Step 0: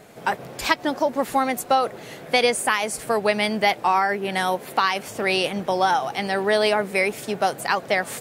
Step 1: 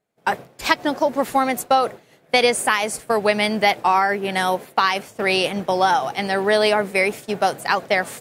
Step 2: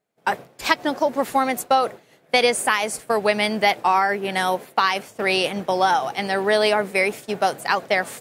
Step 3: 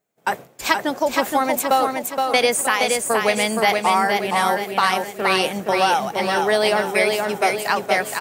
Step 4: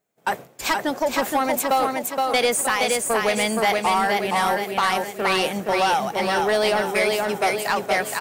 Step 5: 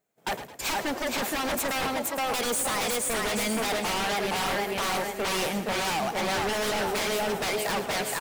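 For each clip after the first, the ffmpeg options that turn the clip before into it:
-af "agate=range=0.0224:threshold=0.0501:ratio=3:detection=peak,volume=1.33"
-af "lowshelf=f=120:g=-5.5,volume=0.891"
-filter_complex "[0:a]aexciter=amount=2.2:drive=2.9:freq=6400,asplit=2[s0][s1];[s1]aecho=0:1:470|940|1410|1880|2350:0.631|0.265|0.111|0.0467|0.0196[s2];[s0][s2]amix=inputs=2:normalize=0"
-af "asoftclip=type=tanh:threshold=0.224"
-filter_complex "[0:a]aeval=exprs='0.0891*(abs(mod(val(0)/0.0891+3,4)-2)-1)':c=same,asplit=5[s0][s1][s2][s3][s4];[s1]adelay=108,afreqshift=30,volume=0.251[s5];[s2]adelay=216,afreqshift=60,volume=0.108[s6];[s3]adelay=324,afreqshift=90,volume=0.0462[s7];[s4]adelay=432,afreqshift=120,volume=0.02[s8];[s0][s5][s6][s7][s8]amix=inputs=5:normalize=0,volume=0.794"

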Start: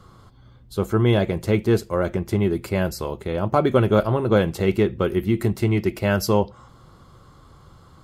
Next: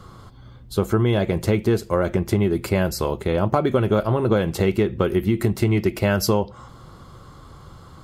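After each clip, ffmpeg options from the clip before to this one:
-af "acompressor=threshold=0.0891:ratio=6,volume=1.88"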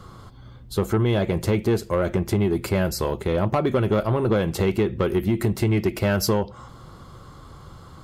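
-af "asoftclip=type=tanh:threshold=0.237"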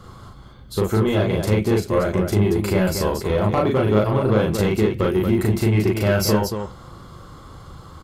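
-af "aecho=1:1:37.9|230.3:0.891|0.501"

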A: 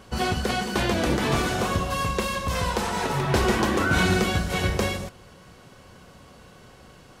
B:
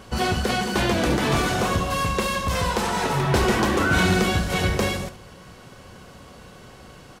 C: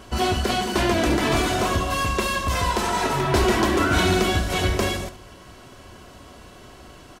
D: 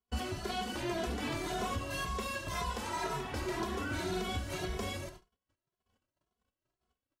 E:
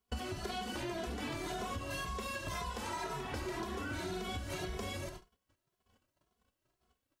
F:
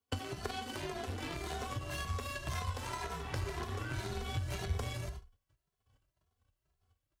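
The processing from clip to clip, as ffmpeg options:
-filter_complex "[0:a]asplit=2[s0][s1];[s1]asoftclip=type=tanh:threshold=0.0398,volume=0.631[s2];[s0][s2]amix=inputs=2:normalize=0,aecho=1:1:71:0.2"
-af "aecho=1:1:3:0.46"
-filter_complex "[0:a]agate=range=0.0112:threshold=0.0112:ratio=16:detection=peak,alimiter=limit=0.15:level=0:latency=1:release=301,asplit=2[s0][s1];[s1]adelay=2.4,afreqshift=1.9[s2];[s0][s2]amix=inputs=2:normalize=1,volume=0.422"
-af "acompressor=threshold=0.00708:ratio=6,volume=2"
-af "aeval=exprs='0.0531*(cos(1*acos(clip(val(0)/0.0531,-1,1)))-cos(1*PI/2))+0.0133*(cos(3*acos(clip(val(0)/0.0531,-1,1)))-cos(3*PI/2))':c=same,afreqshift=25,asubboost=boost=6.5:cutoff=93,volume=2.37"

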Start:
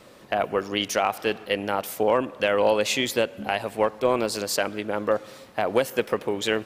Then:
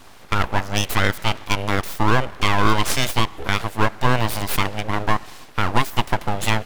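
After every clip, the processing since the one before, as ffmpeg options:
-af "aeval=exprs='abs(val(0))':c=same,volume=2.11"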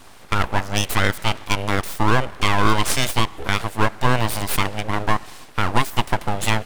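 -af "equalizer=f=8900:t=o:w=0.42:g=4"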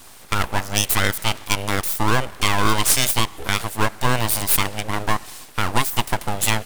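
-af "crystalizer=i=2:c=0,volume=0.794"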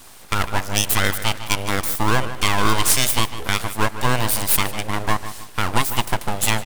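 -filter_complex "[0:a]asplit=2[s0][s1];[s1]adelay=152,lowpass=f=4800:p=1,volume=0.237,asplit=2[s2][s3];[s3]adelay=152,lowpass=f=4800:p=1,volume=0.35,asplit=2[s4][s5];[s5]adelay=152,lowpass=f=4800:p=1,volume=0.35,asplit=2[s6][s7];[s7]adelay=152,lowpass=f=4800:p=1,volume=0.35[s8];[s0][s2][s4][s6][s8]amix=inputs=5:normalize=0"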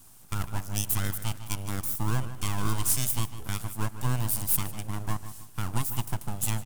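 -af "equalizer=f=125:t=o:w=1:g=6,equalizer=f=500:t=o:w=1:g=-9,equalizer=f=1000:t=o:w=1:g=-3,equalizer=f=2000:t=o:w=1:g=-9,equalizer=f=4000:t=o:w=1:g=-7,equalizer=f=16000:t=o:w=1:g=3,volume=0.376"

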